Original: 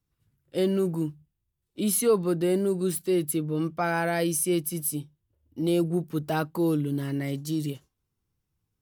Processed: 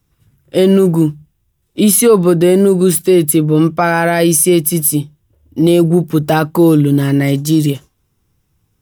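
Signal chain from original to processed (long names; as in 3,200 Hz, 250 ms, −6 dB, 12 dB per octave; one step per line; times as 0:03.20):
notch filter 4,400 Hz, Q 11
boost into a limiter +18 dB
level −1 dB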